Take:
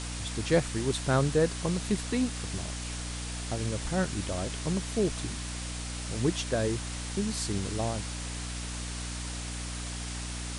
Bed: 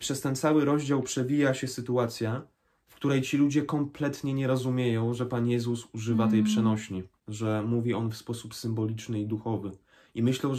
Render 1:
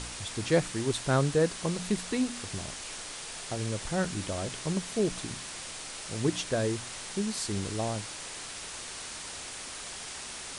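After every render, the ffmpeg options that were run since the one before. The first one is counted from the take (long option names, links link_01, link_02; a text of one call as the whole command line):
ffmpeg -i in.wav -af "bandreject=frequency=60:width_type=h:width=4,bandreject=frequency=120:width_type=h:width=4,bandreject=frequency=180:width_type=h:width=4,bandreject=frequency=240:width_type=h:width=4,bandreject=frequency=300:width_type=h:width=4" out.wav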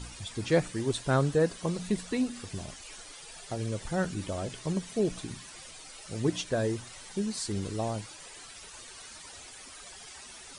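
ffmpeg -i in.wav -af "afftdn=noise_reduction=12:noise_floor=-41" out.wav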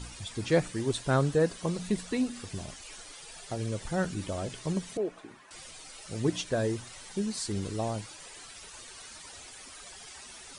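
ffmpeg -i in.wav -filter_complex "[0:a]asettb=1/sr,asplit=3[link_01][link_02][link_03];[link_01]atrim=end=4.974[link_04];[link_02]atrim=start=4.97:end=5.51,asetpts=PTS-STARTPTS,afade=type=in:duration=0.004:curve=qsin,afade=type=out:start_time=0.536:duration=0.004:curve=qsin,acrossover=split=320 2100:gain=0.0891 1 0.126[link_05][link_06][link_07];[link_05][link_06][link_07]amix=inputs=3:normalize=0[link_08];[link_03]atrim=start=5.506[link_09];[link_04][link_08]acrossfade=duration=0.004:curve1=hsin:curve2=qsin[link_10];[link_10][link_09]acrossfade=duration=0.004:curve1=qsin:curve2=hsin" out.wav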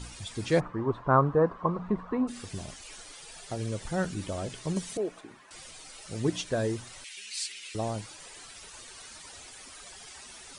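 ffmpeg -i in.wav -filter_complex "[0:a]asplit=3[link_01][link_02][link_03];[link_01]afade=type=out:start_time=0.59:duration=0.02[link_04];[link_02]lowpass=frequency=1100:width_type=q:width=5,afade=type=in:start_time=0.59:duration=0.02,afade=type=out:start_time=2.27:duration=0.02[link_05];[link_03]afade=type=in:start_time=2.27:duration=0.02[link_06];[link_04][link_05][link_06]amix=inputs=3:normalize=0,asettb=1/sr,asplit=3[link_07][link_08][link_09];[link_07]atrim=end=4.764[link_10];[link_08]atrim=start=4.76:end=5.21,asetpts=PTS-STARTPTS,afade=type=in:duration=0.004:curve=qsin,afade=type=out:start_time=0.446:duration=0.004:curve=qsin,highshelf=frequency=4100:gain=7[link_11];[link_09]atrim=start=5.206[link_12];[link_10][link_11]acrossfade=duration=0.004:curve1=hsin:curve2=qsin[link_13];[link_13][link_12]acrossfade=duration=0.004:curve1=qsin:curve2=hsin,asettb=1/sr,asplit=3[link_14][link_15][link_16];[link_14]atrim=end=7.044[link_17];[link_15]atrim=start=7.04:end=7.75,asetpts=PTS-STARTPTS,afade=type=in:duration=0.004:curve=qsin,afade=type=out:start_time=0.706:duration=0.004:curve=qsin,highpass=frequency=2500:width_type=q:width=3.6[link_18];[link_16]atrim=start=7.746[link_19];[link_17][link_18]acrossfade=duration=0.004:curve1=hsin:curve2=qsin[link_20];[link_20][link_19]acrossfade=duration=0.004:curve1=qsin:curve2=hsin" out.wav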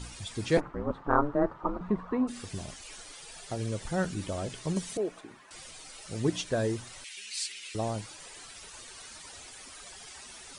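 ffmpeg -i in.wav -filter_complex "[0:a]asettb=1/sr,asplit=3[link_01][link_02][link_03];[link_01]atrim=end=0.574[link_04];[link_02]atrim=start=0.57:end=1.81,asetpts=PTS-STARTPTS,afade=type=in:duration=0.004:curve=qsin,afade=type=out:start_time=1.236:duration=0.004:curve=qsin,aeval=exprs='val(0)*sin(2*PI*150*n/s)':channel_layout=same[link_05];[link_03]atrim=start=1.806[link_06];[link_04][link_05]acrossfade=duration=0.004:curve1=hsin:curve2=qsin[link_07];[link_07][link_06]acrossfade=duration=0.004:curve1=qsin:curve2=hsin" out.wav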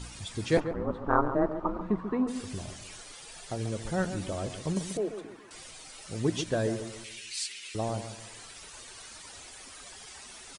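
ffmpeg -i in.wav -filter_complex "[0:a]asplit=2[link_01][link_02];[link_02]adelay=139,lowpass=frequency=1200:poles=1,volume=-9dB,asplit=2[link_03][link_04];[link_04]adelay=139,lowpass=frequency=1200:poles=1,volume=0.4,asplit=2[link_05][link_06];[link_06]adelay=139,lowpass=frequency=1200:poles=1,volume=0.4,asplit=2[link_07][link_08];[link_08]adelay=139,lowpass=frequency=1200:poles=1,volume=0.4[link_09];[link_01][link_03][link_05][link_07][link_09]amix=inputs=5:normalize=0" out.wav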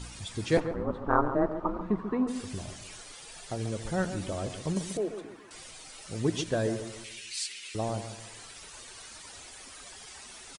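ffmpeg -i in.wav -af "aecho=1:1:84|168|252:0.075|0.036|0.0173" out.wav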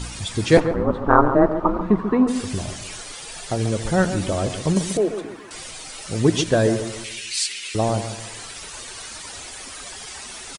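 ffmpeg -i in.wav -af "volume=11dB,alimiter=limit=-1dB:level=0:latency=1" out.wav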